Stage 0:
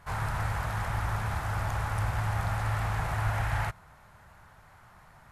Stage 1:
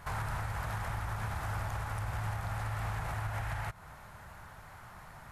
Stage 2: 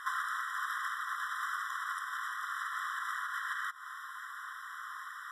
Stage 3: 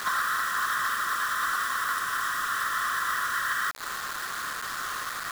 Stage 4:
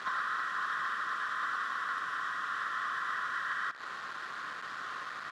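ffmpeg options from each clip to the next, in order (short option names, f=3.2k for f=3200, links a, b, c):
-af "highshelf=f=11k:g=4,acompressor=threshold=-34dB:ratio=6,alimiter=level_in=7.5dB:limit=-24dB:level=0:latency=1:release=200,volume=-7.5dB,volume=4.5dB"
-filter_complex "[0:a]asplit=2[a][b];[b]acompressor=threshold=-44dB:ratio=6,volume=2dB[c];[a][c]amix=inputs=2:normalize=0,highshelf=f=9.5k:g=-7.5,afftfilt=real='re*eq(mod(floor(b*sr/1024/1000),2),1)':imag='im*eq(mod(floor(b*sr/1024/1000),2),1)':win_size=1024:overlap=0.75,volume=4.5dB"
-filter_complex "[0:a]asplit=2[a][b];[b]asoftclip=type=tanh:threshold=-35.5dB,volume=-10.5dB[c];[a][c]amix=inputs=2:normalize=0,acrusher=bits=6:mix=0:aa=0.000001,volume=29.5dB,asoftclip=hard,volume=-29.5dB,volume=7.5dB"
-af "highpass=130,lowpass=3.4k,aecho=1:1:165:0.188,volume=-6.5dB"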